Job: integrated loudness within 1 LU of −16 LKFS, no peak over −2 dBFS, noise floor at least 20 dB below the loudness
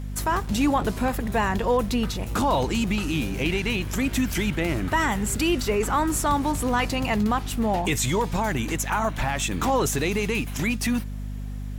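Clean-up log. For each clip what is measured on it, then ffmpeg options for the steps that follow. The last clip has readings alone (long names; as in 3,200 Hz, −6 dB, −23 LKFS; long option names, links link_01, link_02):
mains hum 50 Hz; hum harmonics up to 250 Hz; level of the hum −29 dBFS; integrated loudness −24.5 LKFS; sample peak −11.0 dBFS; target loudness −16.0 LKFS
→ -af "bandreject=frequency=50:width_type=h:width=6,bandreject=frequency=100:width_type=h:width=6,bandreject=frequency=150:width_type=h:width=6,bandreject=frequency=200:width_type=h:width=6,bandreject=frequency=250:width_type=h:width=6"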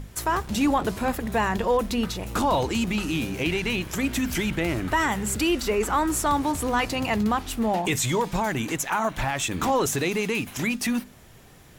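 mains hum none found; integrated loudness −25.0 LKFS; sample peak −12.5 dBFS; target loudness −16.0 LKFS
→ -af "volume=9dB"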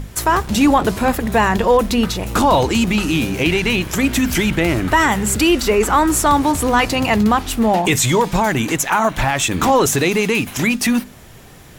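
integrated loudness −16.0 LKFS; sample peak −3.5 dBFS; background noise floor −40 dBFS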